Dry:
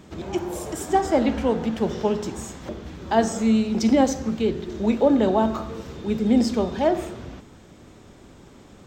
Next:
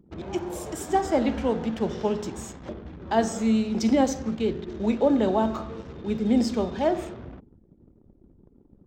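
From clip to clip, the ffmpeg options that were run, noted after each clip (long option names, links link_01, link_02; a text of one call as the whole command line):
ffmpeg -i in.wav -af "anlmdn=0.251,volume=-3dB" out.wav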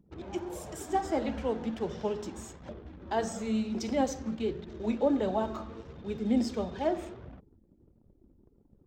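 ffmpeg -i in.wav -af "flanger=delay=1.1:depth=2.8:regen=-45:speed=1.5:shape=triangular,volume=-2.5dB" out.wav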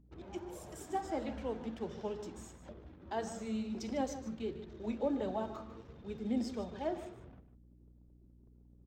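ffmpeg -i in.wav -af "aeval=exprs='val(0)+0.002*(sin(2*PI*60*n/s)+sin(2*PI*2*60*n/s)/2+sin(2*PI*3*60*n/s)/3+sin(2*PI*4*60*n/s)/4+sin(2*PI*5*60*n/s)/5)':channel_layout=same,aecho=1:1:150:0.211,volume=-7.5dB" out.wav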